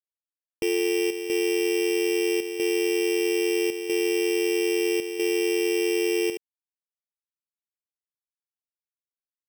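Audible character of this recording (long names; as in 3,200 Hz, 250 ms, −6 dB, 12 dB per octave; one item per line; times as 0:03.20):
a buzz of ramps at a fixed pitch in blocks of 16 samples
chopped level 0.77 Hz, depth 60%, duty 85%
a quantiser's noise floor 12 bits, dither none
Ogg Vorbis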